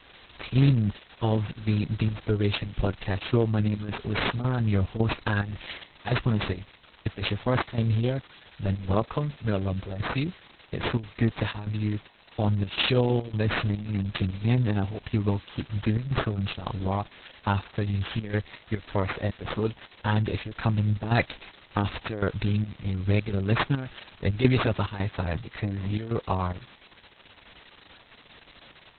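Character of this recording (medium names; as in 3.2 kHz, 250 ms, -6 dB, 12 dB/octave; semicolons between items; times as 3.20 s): aliases and images of a low sample rate 6.4 kHz, jitter 0%; chopped level 1.8 Hz, depth 65%, duty 75%; a quantiser's noise floor 8-bit, dither triangular; Opus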